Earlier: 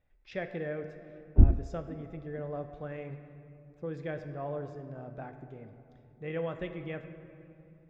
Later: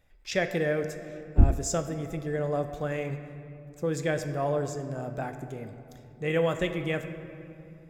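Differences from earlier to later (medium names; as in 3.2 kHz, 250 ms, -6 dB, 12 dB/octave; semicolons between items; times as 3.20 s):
speech +8.0 dB; master: remove distance through air 300 m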